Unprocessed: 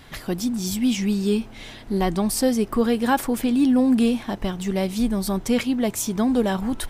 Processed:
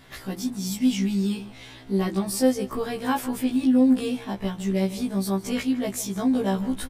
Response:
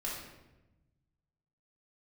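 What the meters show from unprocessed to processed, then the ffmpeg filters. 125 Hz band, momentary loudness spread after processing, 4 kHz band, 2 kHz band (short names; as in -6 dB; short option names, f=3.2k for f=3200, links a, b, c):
-1.0 dB, 10 LU, -3.5 dB, -4.5 dB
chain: -filter_complex "[0:a]asplit=2[a][b];[b]adelay=157.4,volume=-16dB,highshelf=f=4k:g=-3.54[c];[a][c]amix=inputs=2:normalize=0,afftfilt=real='re*1.73*eq(mod(b,3),0)':imag='im*1.73*eq(mod(b,3),0)':win_size=2048:overlap=0.75,volume=-1.5dB"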